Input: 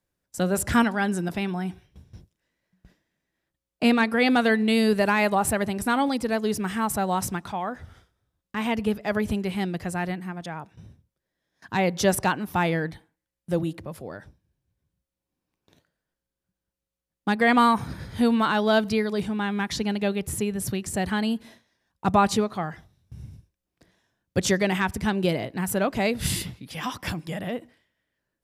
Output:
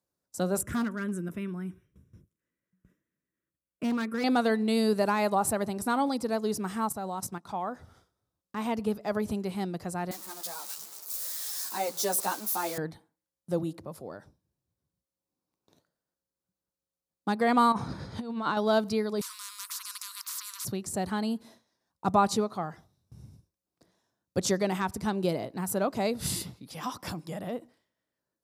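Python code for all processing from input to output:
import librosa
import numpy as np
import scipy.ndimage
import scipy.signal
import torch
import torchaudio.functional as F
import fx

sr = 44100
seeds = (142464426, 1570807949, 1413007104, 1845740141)

y = fx.chain(x, sr, fx.high_shelf(hz=2200.0, db=-2.5),
    fx.fixed_phaser(hz=1900.0, stages=4),
    fx.clip_hard(threshold_db=-20.5), at=(0.61, 4.24))
y = fx.chain(y, sr, fx.level_steps(step_db=10),
    fx.upward_expand(threshold_db=-42.0, expansion=1.5), at=(6.89, 7.49))
y = fx.chain(y, sr, fx.crossing_spikes(level_db=-18.5),
    fx.highpass(hz=320.0, slope=12),
    fx.ensemble(), at=(10.11, 12.78))
y = fx.chain(y, sr, fx.lowpass(hz=6000.0, slope=12),
    fx.over_compress(threshold_db=-25.0, ratio=-0.5), at=(17.72, 18.57))
y = fx.chain(y, sr, fx.brickwall_highpass(low_hz=960.0),
    fx.spectral_comp(ratio=10.0), at=(19.21, 20.65))
y = fx.highpass(y, sr, hz=170.0, slope=6)
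y = fx.band_shelf(y, sr, hz=2300.0, db=-8.0, octaves=1.3)
y = F.gain(torch.from_numpy(y), -3.0).numpy()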